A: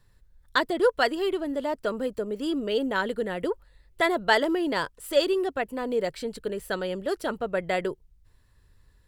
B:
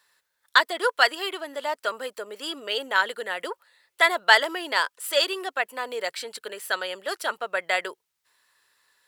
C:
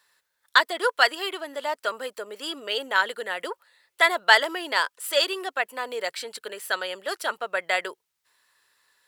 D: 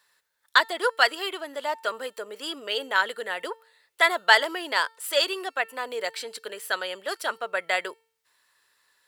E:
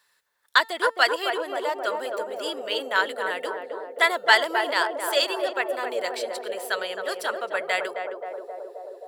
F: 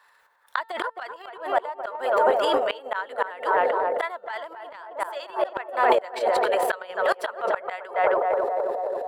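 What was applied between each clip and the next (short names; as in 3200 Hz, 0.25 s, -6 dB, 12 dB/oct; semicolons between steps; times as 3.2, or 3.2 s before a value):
HPF 980 Hz 12 dB/oct; gain +7.5 dB
nothing audible
resonator 450 Hz, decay 0.56 s, mix 40%; gain +3.5 dB
narrowing echo 0.265 s, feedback 82%, band-pass 500 Hz, level -3 dB
flipped gate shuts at -17 dBFS, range -30 dB; EQ curve 280 Hz 0 dB, 910 Hz +15 dB, 5500 Hz -4 dB; transient shaper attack -5 dB, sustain +11 dB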